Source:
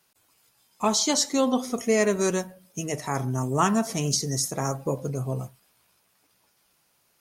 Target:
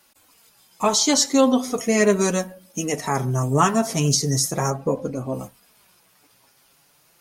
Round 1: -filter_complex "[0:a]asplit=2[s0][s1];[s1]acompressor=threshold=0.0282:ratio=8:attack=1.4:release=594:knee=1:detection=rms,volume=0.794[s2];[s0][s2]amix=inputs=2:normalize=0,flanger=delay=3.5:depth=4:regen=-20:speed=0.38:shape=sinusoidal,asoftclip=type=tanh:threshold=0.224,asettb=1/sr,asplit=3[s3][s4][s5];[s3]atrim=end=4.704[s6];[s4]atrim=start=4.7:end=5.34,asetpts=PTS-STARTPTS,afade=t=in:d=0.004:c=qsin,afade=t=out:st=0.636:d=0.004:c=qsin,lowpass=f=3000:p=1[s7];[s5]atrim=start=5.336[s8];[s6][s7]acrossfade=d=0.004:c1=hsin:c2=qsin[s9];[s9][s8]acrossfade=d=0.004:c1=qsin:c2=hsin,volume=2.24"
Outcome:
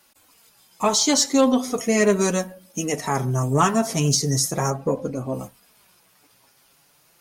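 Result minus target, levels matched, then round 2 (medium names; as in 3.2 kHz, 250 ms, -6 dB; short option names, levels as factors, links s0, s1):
saturation: distortion +14 dB
-filter_complex "[0:a]asplit=2[s0][s1];[s1]acompressor=threshold=0.0282:ratio=8:attack=1.4:release=594:knee=1:detection=rms,volume=0.794[s2];[s0][s2]amix=inputs=2:normalize=0,flanger=delay=3.5:depth=4:regen=-20:speed=0.38:shape=sinusoidal,asoftclip=type=tanh:threshold=0.531,asettb=1/sr,asplit=3[s3][s4][s5];[s3]atrim=end=4.704[s6];[s4]atrim=start=4.7:end=5.34,asetpts=PTS-STARTPTS,afade=t=in:d=0.004:c=qsin,afade=t=out:st=0.636:d=0.004:c=qsin,lowpass=f=3000:p=1[s7];[s5]atrim=start=5.336[s8];[s6][s7]acrossfade=d=0.004:c1=hsin:c2=qsin[s9];[s9][s8]acrossfade=d=0.004:c1=qsin:c2=hsin,volume=2.24"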